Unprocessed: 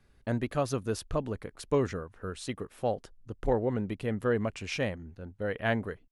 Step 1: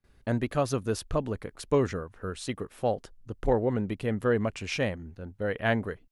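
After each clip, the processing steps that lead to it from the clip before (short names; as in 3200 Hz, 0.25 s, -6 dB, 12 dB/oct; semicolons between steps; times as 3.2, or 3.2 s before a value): gate with hold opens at -56 dBFS; gain +2.5 dB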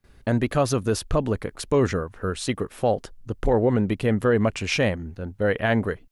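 limiter -19 dBFS, peak gain reduction 6.5 dB; gain +8 dB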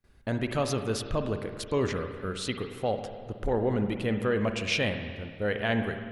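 dynamic EQ 3300 Hz, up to +7 dB, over -43 dBFS, Q 1.1; spring tank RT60 1.9 s, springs 48/53 ms, chirp 55 ms, DRR 6.5 dB; gain -7.5 dB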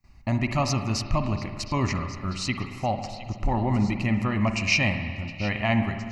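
fixed phaser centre 2300 Hz, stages 8; delay with a stepping band-pass 0.714 s, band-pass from 3400 Hz, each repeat 0.7 oct, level -11 dB; gain +8 dB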